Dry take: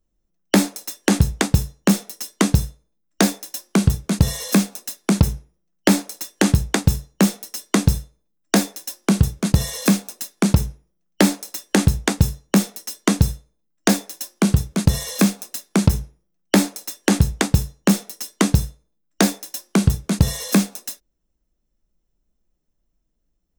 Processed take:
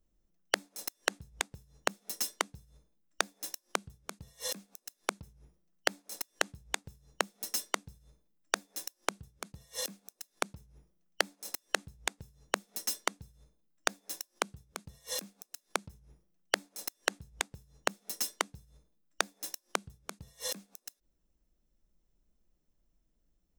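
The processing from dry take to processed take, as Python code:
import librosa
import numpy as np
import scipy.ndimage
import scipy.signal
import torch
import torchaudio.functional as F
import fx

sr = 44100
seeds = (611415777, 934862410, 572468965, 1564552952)

y = fx.gate_flip(x, sr, shuts_db=-16.0, range_db=-33)
y = y * librosa.db_to_amplitude(-2.5)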